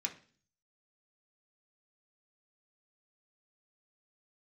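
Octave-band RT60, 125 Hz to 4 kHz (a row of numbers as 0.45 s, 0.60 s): 0.75 s, 0.60 s, 0.45 s, 0.40 s, 0.45 s, 0.50 s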